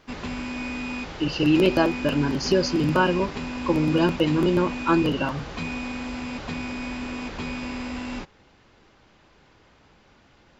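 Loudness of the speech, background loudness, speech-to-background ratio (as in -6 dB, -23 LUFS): -23.0 LUFS, -32.0 LUFS, 9.0 dB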